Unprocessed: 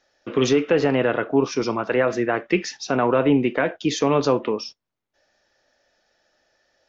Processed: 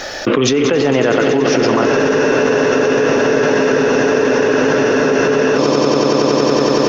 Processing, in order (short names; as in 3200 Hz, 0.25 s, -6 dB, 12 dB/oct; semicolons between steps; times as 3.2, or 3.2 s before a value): swelling echo 93 ms, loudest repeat 5, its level -12 dB; spectral freeze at 1.88, 3.68 s; fast leveller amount 100%; gain +1 dB